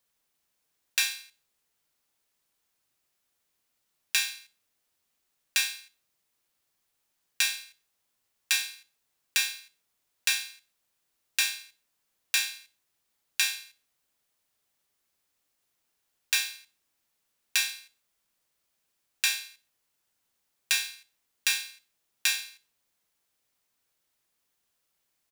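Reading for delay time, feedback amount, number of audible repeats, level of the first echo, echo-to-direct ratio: 61 ms, 36%, 2, -18.0 dB, -17.5 dB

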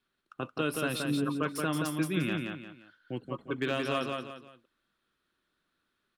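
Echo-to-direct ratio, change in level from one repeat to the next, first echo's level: -3.5 dB, -9.5 dB, -4.0 dB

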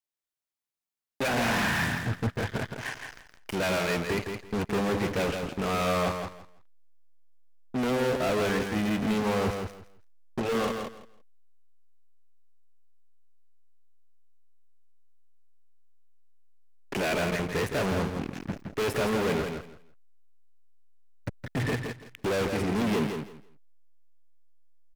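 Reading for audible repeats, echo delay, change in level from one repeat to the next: 3, 0.166 s, -14.0 dB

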